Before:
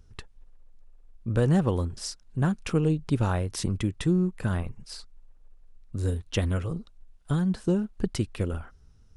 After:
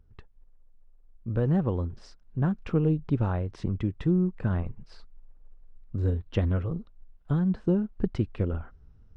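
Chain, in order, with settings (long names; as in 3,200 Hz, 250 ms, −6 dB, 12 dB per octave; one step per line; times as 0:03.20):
speech leveller 2 s
head-to-tape spacing loss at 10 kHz 34 dB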